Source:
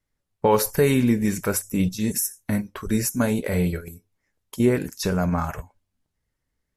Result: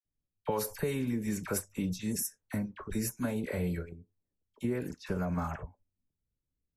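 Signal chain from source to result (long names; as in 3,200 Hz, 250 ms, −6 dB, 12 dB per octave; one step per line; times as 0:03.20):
low-pass that shuts in the quiet parts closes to 380 Hz, open at −20 dBFS
0:03.05–0:05.33: dynamic equaliser 6,700 Hz, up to −4 dB, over −43 dBFS, Q 0.76
downward compressor, threshold −21 dBFS, peak gain reduction 8 dB
all-pass dispersion lows, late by 48 ms, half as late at 1,300 Hz
level −7.5 dB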